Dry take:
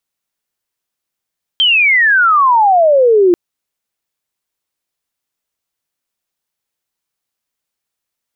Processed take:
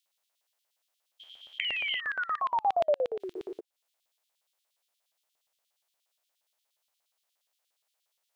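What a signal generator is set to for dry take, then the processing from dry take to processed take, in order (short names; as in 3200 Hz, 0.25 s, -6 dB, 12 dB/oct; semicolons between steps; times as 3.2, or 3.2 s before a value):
chirp logarithmic 3200 Hz -> 340 Hz -7.5 dBFS -> -5.5 dBFS 1.74 s
stepped spectrum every 0.4 s; compressor 4:1, threshold -31 dBFS; LFO high-pass square 8.5 Hz 640–3300 Hz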